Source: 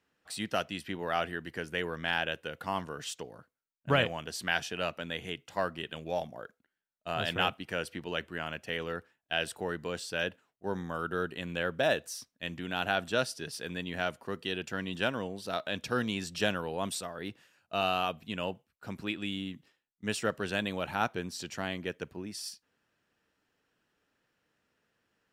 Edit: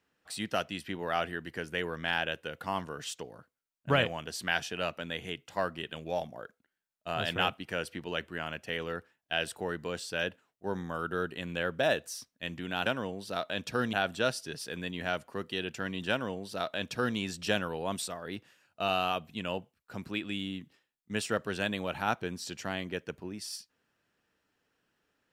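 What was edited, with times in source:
15.03–16.10 s: copy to 12.86 s

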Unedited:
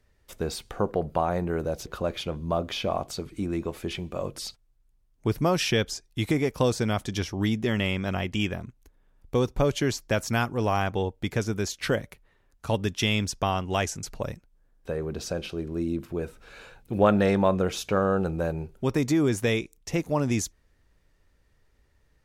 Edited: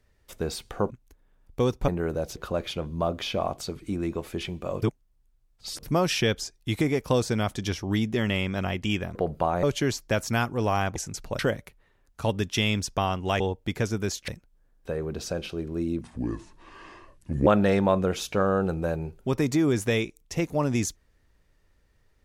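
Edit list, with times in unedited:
0.90–1.38 s: swap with 8.65–9.63 s
4.32–5.33 s: reverse
10.96–11.84 s: swap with 13.85–14.28 s
16.01–17.03 s: speed 70%

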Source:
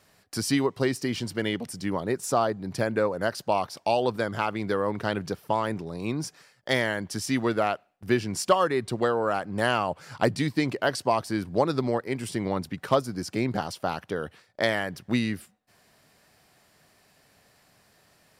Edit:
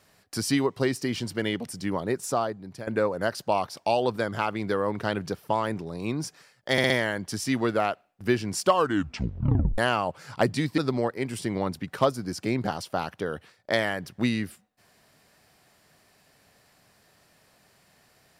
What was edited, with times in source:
2.15–2.87 s: fade out, to -14 dB
6.72 s: stutter 0.06 s, 4 plays
8.55 s: tape stop 1.05 s
10.60–11.68 s: delete

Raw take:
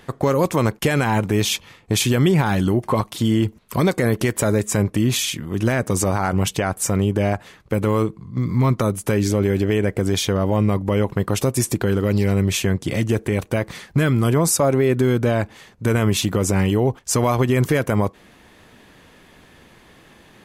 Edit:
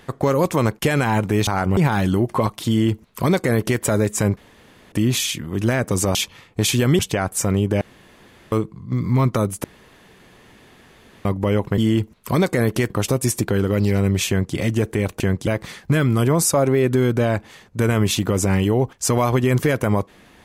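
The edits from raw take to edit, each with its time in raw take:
1.47–2.31 s: swap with 6.14–6.44 s
3.23–4.35 s: copy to 11.23 s
4.91 s: insert room tone 0.55 s
7.26–7.97 s: room tone
9.09–10.70 s: room tone
12.61–12.88 s: copy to 13.53 s

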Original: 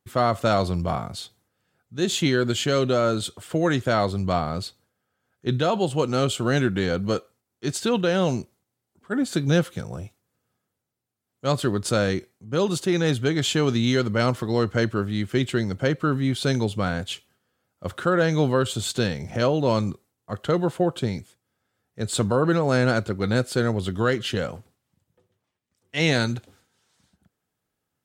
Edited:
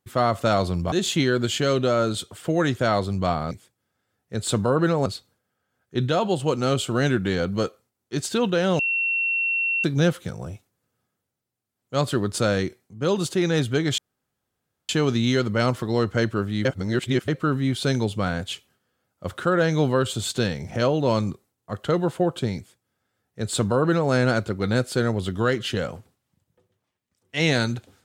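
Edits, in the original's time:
0.92–1.98 s: delete
8.30–9.35 s: bleep 2.72 kHz -20.5 dBFS
13.49 s: insert room tone 0.91 s
15.25–15.88 s: reverse
21.17–22.72 s: copy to 4.57 s

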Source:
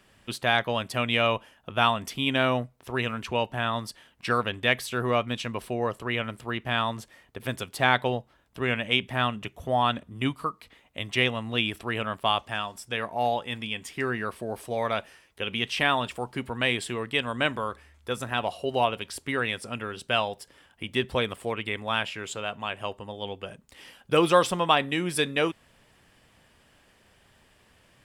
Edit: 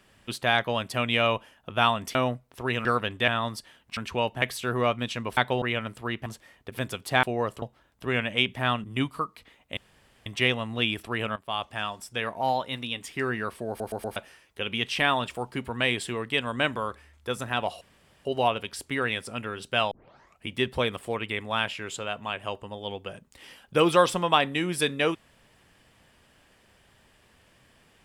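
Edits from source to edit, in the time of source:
2.15–2.44 s: delete
3.14–3.59 s: swap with 4.28–4.71 s
5.66–6.05 s: swap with 7.91–8.16 s
6.69–6.94 s: delete
9.38–10.09 s: delete
11.02 s: insert room tone 0.49 s
12.12–12.62 s: fade in, from -15 dB
13.17–13.83 s: speed 108%
14.49 s: stutter in place 0.12 s, 4 plays
18.62 s: insert room tone 0.44 s
20.28 s: tape start 0.55 s

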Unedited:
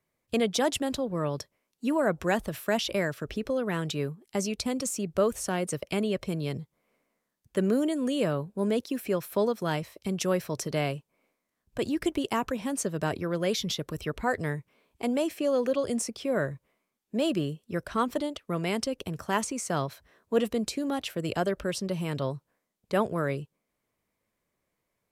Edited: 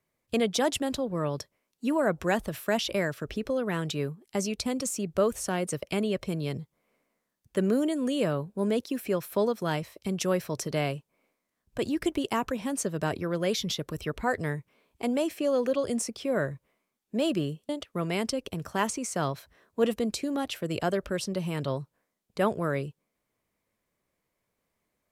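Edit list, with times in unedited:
17.69–18.23 s: delete

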